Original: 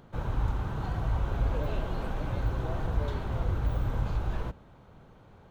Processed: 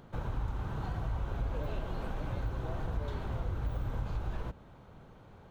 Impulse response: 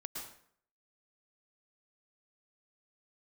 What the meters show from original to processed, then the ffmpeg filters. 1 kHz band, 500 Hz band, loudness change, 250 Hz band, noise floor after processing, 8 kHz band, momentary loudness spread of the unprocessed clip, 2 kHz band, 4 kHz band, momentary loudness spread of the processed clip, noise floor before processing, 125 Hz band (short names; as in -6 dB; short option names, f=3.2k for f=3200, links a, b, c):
-5.0 dB, -5.0 dB, -5.5 dB, -5.0 dB, -55 dBFS, n/a, 4 LU, -5.0 dB, -5.0 dB, 18 LU, -55 dBFS, -5.5 dB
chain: -af "acompressor=threshold=-35dB:ratio=2"